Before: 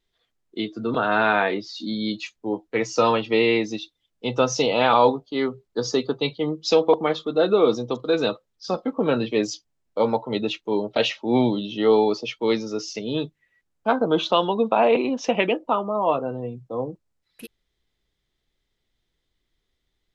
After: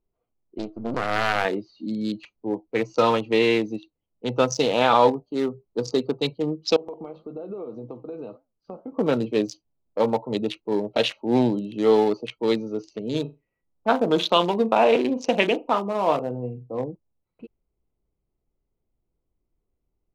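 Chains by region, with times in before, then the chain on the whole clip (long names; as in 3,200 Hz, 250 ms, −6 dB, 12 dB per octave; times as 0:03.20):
0:00.58–0:01.45: gain on one half-wave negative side −7 dB + highs frequency-modulated by the lows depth 0.55 ms
0:06.76–0:08.92: downward compressor 12 to 1, threshold −25 dBFS + flanger 1.8 Hz, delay 5 ms, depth 5.9 ms, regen −86%
0:13.09–0:16.84: high-shelf EQ 3,700 Hz +5.5 dB + flutter between parallel walls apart 6.9 metres, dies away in 0.22 s
whole clip: adaptive Wiener filter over 25 samples; low-pass that shuts in the quiet parts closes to 2,100 Hz, open at −20 dBFS; high-shelf EQ 6,500 Hz +8 dB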